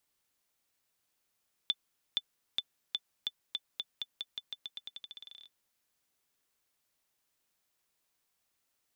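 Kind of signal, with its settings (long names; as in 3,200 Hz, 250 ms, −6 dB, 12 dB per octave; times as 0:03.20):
bouncing ball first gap 0.47 s, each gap 0.88, 3,510 Hz, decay 46 ms −17 dBFS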